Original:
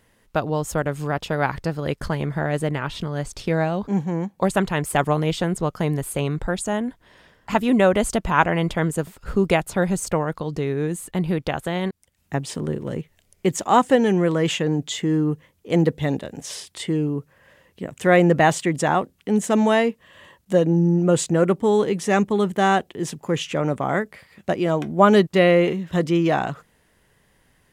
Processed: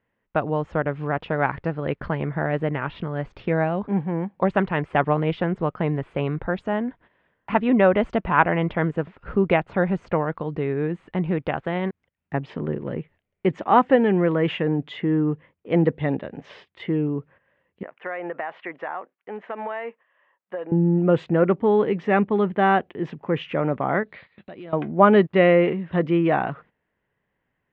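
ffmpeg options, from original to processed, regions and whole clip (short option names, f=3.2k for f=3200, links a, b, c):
-filter_complex "[0:a]asettb=1/sr,asplit=3[a][b][c];[a]atrim=end=17.834[d];[b]atrim=start=17.83:end=20.72,asetpts=PTS-STARTPTS,afade=t=in:d=0.004:c=qsin,afade=t=out:st=2.886:d=0.004:c=qsin,highpass=700,lowpass=2.2k,acompressor=threshold=-25dB:ratio=10:attack=3.2:release=140:knee=1:detection=peak[e];[c]atrim=start=20.716[f];[d][e]acrossfade=d=0.004:c1=hsin:c2=qsin[g];[g][f]acrossfade=d=0.004:c1=qsin:c2=hsin,asettb=1/sr,asplit=3[h][i][j];[h]atrim=end=24.034[k];[i]atrim=start=24.03:end=24.73,asetpts=PTS-STARTPTS,afade=t=in:d=0.004:c=qsin,afade=t=out:st=0.696:d=0.004:c=qsin,acompressor=threshold=-36dB:ratio=6:attack=3.2:release=140:knee=1:detection=peak,lowpass=f=4k:t=q:w=8.4,asoftclip=type=hard:threshold=-31dB[l];[j]atrim=start=24.726[m];[k][l]acrossfade=d=0.004:c1=hsin:c2=qsin[n];[n][m]acrossfade=d=0.004:c1=qsin:c2=hsin,lowpass=f=2.6k:w=0.5412,lowpass=f=2.6k:w=1.3066,agate=range=-13dB:threshold=-47dB:ratio=16:detection=peak,lowshelf=f=66:g=-10.5"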